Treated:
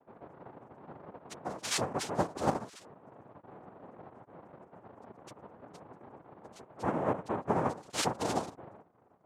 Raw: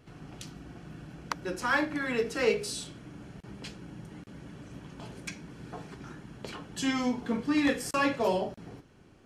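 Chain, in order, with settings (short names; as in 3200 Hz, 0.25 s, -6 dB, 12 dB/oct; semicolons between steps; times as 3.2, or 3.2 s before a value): loudest bins only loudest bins 2; noise vocoder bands 2; vocal rider 0.5 s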